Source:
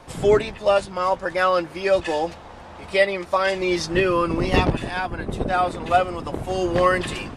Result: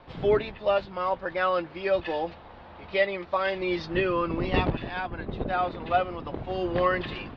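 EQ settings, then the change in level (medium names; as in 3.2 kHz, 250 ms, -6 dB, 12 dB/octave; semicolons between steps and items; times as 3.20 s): steep low-pass 4.3 kHz 36 dB/octave; -6.0 dB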